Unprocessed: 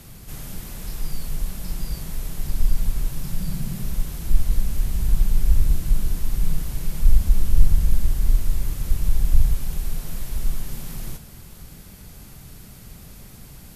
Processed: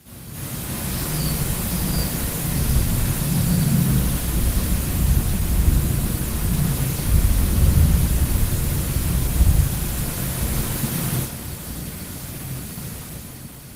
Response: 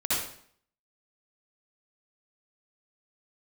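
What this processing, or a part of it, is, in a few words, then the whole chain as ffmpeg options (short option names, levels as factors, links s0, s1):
far-field microphone of a smart speaker: -filter_complex "[1:a]atrim=start_sample=2205[s0];[0:a][s0]afir=irnorm=-1:irlink=0,highpass=91,dynaudnorm=f=160:g=9:m=2.24,volume=0.794" -ar 48000 -c:a libopus -b:a 20k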